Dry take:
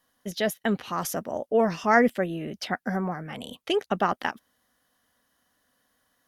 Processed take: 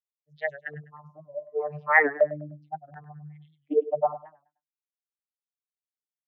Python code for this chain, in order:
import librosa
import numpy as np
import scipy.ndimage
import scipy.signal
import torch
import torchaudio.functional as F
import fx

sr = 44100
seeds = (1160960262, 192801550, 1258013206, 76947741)

y = fx.bin_expand(x, sr, power=3.0)
y = fx.low_shelf(y, sr, hz=220.0, db=-9.0)
y = fx.notch(y, sr, hz=1400.0, q=7.5)
y = fx.vocoder(y, sr, bands=32, carrier='saw', carrier_hz=149.0)
y = fx.comb_fb(y, sr, f0_hz=130.0, decay_s=1.8, harmonics='all', damping=0.0, mix_pct=40, at=(0.91, 1.64), fade=0.02)
y = fx.filter_lfo_lowpass(y, sr, shape='square', hz=0.68, low_hz=660.0, high_hz=1800.0, q=6.3)
y = fx.echo_feedback(y, sr, ms=101, feedback_pct=32, wet_db=-15.5)
y = fx.record_warp(y, sr, rpm=78.0, depth_cents=100.0)
y = F.gain(torch.from_numpy(y), 1.0).numpy()